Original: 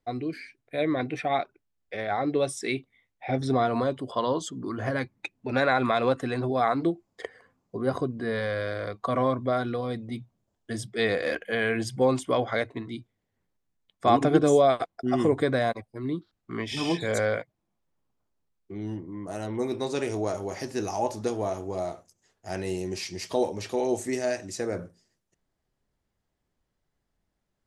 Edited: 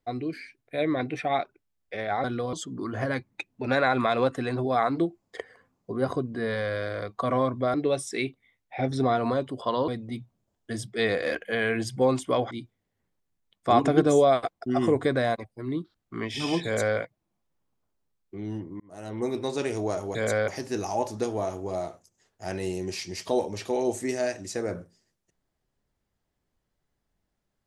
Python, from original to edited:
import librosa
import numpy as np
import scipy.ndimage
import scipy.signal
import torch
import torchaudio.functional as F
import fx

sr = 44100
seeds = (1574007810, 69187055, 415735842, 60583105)

y = fx.edit(x, sr, fx.swap(start_s=2.24, length_s=2.14, other_s=9.59, other_length_s=0.29),
    fx.cut(start_s=12.51, length_s=0.37),
    fx.duplicate(start_s=17.02, length_s=0.33, to_s=20.52),
    fx.fade_in_span(start_s=19.17, length_s=0.43), tone=tone)